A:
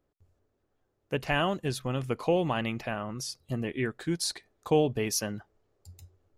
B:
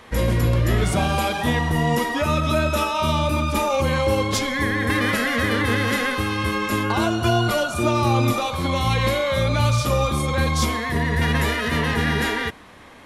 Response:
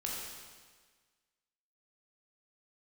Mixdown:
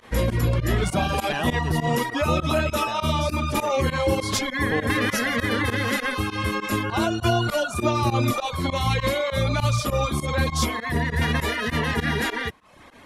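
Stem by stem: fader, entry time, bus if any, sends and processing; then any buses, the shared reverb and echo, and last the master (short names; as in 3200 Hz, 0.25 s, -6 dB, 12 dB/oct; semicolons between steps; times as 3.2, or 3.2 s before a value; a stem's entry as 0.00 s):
-3.5 dB, 0.00 s, no send, dry
-0.5 dB, 0.00 s, no send, reverb removal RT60 0.68 s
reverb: off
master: pump 100 bpm, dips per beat 2, -21 dB, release 63 ms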